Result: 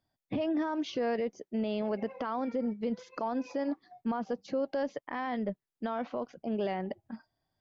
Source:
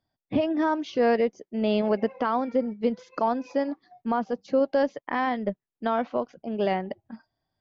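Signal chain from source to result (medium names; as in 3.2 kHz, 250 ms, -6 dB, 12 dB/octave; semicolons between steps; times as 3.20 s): peak limiter -23 dBFS, peak gain reduction 10.5 dB; trim -1 dB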